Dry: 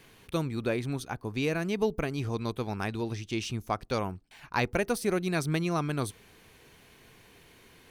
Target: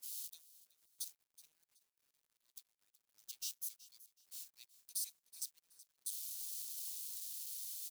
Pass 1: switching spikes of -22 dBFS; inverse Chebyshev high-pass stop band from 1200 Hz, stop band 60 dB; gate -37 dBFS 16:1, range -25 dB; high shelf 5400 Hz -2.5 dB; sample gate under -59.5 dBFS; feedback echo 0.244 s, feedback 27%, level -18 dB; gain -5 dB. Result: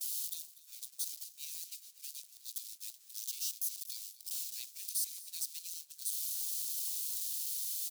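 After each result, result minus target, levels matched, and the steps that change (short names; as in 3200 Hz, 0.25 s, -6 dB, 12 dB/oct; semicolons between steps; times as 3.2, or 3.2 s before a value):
echo 0.13 s early; switching spikes: distortion +7 dB
change: feedback echo 0.374 s, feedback 27%, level -18 dB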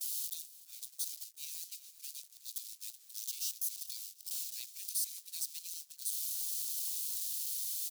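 switching spikes: distortion +7 dB
change: switching spikes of -29 dBFS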